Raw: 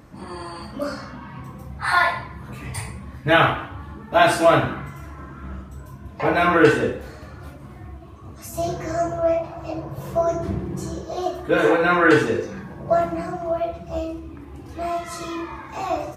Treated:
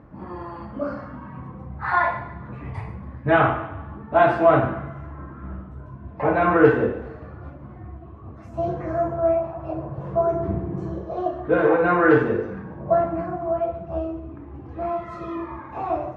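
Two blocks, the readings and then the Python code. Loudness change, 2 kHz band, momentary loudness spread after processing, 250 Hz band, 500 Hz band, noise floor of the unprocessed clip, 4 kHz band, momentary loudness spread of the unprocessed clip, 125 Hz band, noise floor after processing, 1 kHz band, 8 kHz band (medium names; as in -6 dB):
-1.0 dB, -4.5 dB, 21 LU, 0.0 dB, 0.0 dB, -41 dBFS, under -10 dB, 22 LU, 0.0 dB, -41 dBFS, -1.0 dB, under -25 dB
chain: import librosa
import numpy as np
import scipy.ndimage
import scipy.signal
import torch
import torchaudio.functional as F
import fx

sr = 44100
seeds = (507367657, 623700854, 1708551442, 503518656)

y = scipy.signal.sosfilt(scipy.signal.butter(2, 1400.0, 'lowpass', fs=sr, output='sos'), x)
y = fx.echo_feedback(y, sr, ms=142, feedback_pct=42, wet_db=-16.5)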